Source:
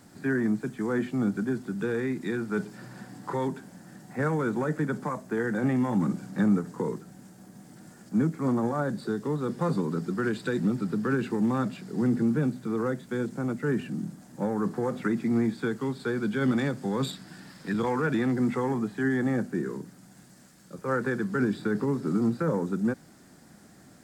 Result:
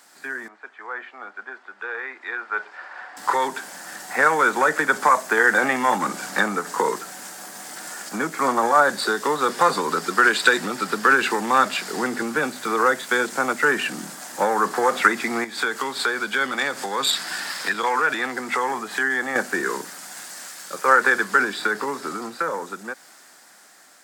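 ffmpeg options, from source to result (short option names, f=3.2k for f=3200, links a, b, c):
-filter_complex "[0:a]asettb=1/sr,asplit=3[a][b][c];[a]atrim=end=0.484[d];[b]atrim=start=0.48:end=3.17,asetpts=PTS-STARTPTS,afade=t=in:d=0.004:c=qsin,afade=t=out:st=2.686:d=0.004:c=qsin,highpass=600,lowpass=2k[e];[c]atrim=start=3.166[f];[d][e]acrossfade=d=0.004:c1=hsin:c2=qsin[g];[g][f]acrossfade=d=0.004:c1=qsin:c2=hsin,asettb=1/sr,asplit=3[h][i][j];[h]atrim=end=15.444[k];[i]atrim=start=15.44:end=19.36,asetpts=PTS-STARTPTS,afade=t=in:d=0.004:c=qsin,afade=t=out:st=3.916:d=0.004:c=qsin,acompressor=threshold=-37dB:ratio=2.5:attack=3.2:release=140:knee=1:detection=peak[l];[j]atrim=start=19.356[m];[k][l]acrossfade=d=0.004:c1=hsin:c2=qsin[n];[n][m]acrossfade=d=0.004:c1=qsin:c2=hsin,acompressor=threshold=-29dB:ratio=2,highpass=910,dynaudnorm=f=600:g=11:m=15dB,volume=7.5dB"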